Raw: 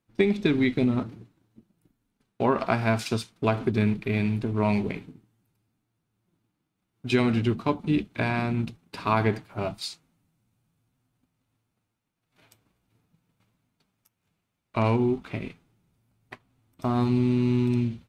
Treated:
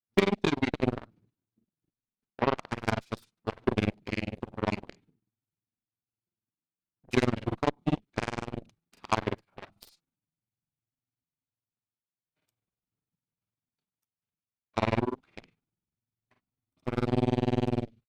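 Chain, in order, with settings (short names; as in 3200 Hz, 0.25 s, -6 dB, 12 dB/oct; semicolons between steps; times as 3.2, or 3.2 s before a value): grains 70 ms, grains 20/s, spray 38 ms, pitch spread up and down by 0 st; added harmonics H 4 -25 dB, 7 -16 dB, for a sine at -10 dBFS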